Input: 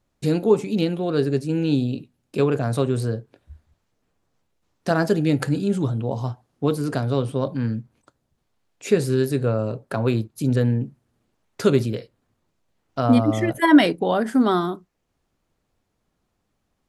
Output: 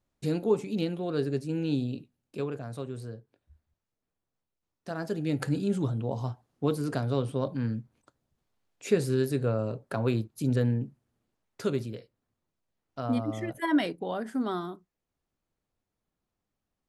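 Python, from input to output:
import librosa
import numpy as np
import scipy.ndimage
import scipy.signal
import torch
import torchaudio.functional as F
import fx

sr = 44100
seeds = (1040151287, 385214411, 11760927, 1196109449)

y = fx.gain(x, sr, db=fx.line((1.97, -8.0), (2.67, -15.5), (4.91, -15.5), (5.51, -6.0), (10.68, -6.0), (11.82, -12.0)))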